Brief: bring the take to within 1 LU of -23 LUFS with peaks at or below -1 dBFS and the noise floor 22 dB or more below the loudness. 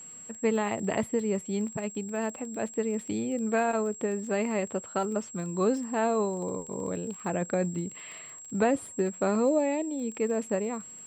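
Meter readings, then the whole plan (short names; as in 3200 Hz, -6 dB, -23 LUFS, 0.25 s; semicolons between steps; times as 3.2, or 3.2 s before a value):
ticks 21/s; steady tone 7600 Hz; tone level -43 dBFS; loudness -30.0 LUFS; peak -14.5 dBFS; loudness target -23.0 LUFS
-> de-click; notch 7600 Hz, Q 30; gain +7 dB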